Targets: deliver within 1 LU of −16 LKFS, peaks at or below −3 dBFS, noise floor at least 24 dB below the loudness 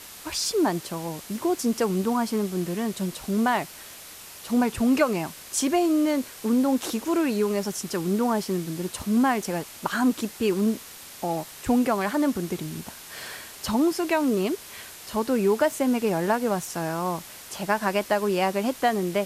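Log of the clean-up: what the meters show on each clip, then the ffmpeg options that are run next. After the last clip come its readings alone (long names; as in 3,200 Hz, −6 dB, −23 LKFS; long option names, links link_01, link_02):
background noise floor −43 dBFS; target noise floor −50 dBFS; integrated loudness −25.5 LKFS; sample peak −8.0 dBFS; target loudness −16.0 LKFS
→ -af "afftdn=noise_reduction=7:noise_floor=-43"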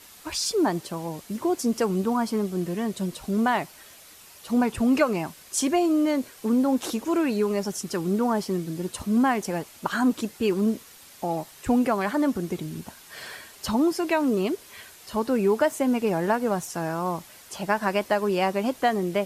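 background noise floor −49 dBFS; target noise floor −50 dBFS
→ -af "afftdn=noise_reduction=6:noise_floor=-49"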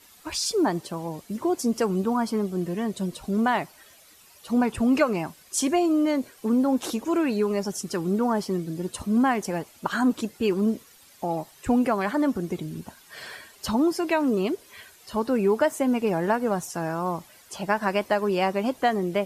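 background noise floor −54 dBFS; integrated loudness −25.5 LKFS; sample peak −8.5 dBFS; target loudness −16.0 LKFS
→ -af "volume=9.5dB,alimiter=limit=-3dB:level=0:latency=1"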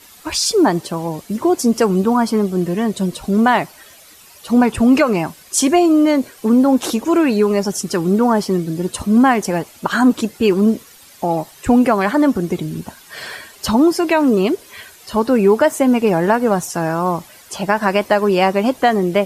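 integrated loudness −16.5 LKFS; sample peak −3.0 dBFS; background noise floor −44 dBFS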